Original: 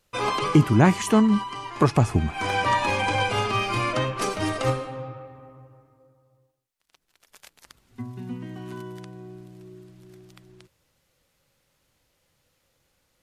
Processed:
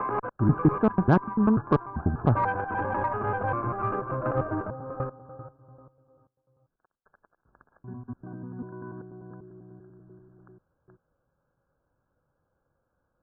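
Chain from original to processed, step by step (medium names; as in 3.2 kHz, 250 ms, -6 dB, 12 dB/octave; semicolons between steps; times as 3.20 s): slices played last to first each 98 ms, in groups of 4; brick-wall FIR low-pass 1.7 kHz; Chebyshev shaper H 6 -28 dB, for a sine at -5 dBFS; trim -3 dB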